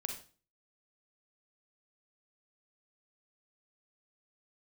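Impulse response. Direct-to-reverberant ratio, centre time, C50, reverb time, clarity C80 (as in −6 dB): 3.0 dB, 21 ms, 6.5 dB, 0.40 s, 11.5 dB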